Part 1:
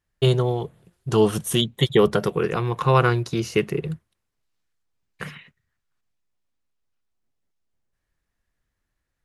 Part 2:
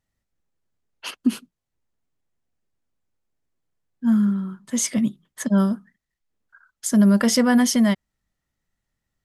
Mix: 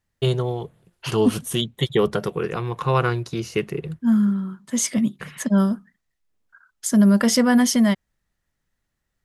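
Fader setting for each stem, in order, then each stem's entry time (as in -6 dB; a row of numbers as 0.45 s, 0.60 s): -2.5 dB, +0.5 dB; 0.00 s, 0.00 s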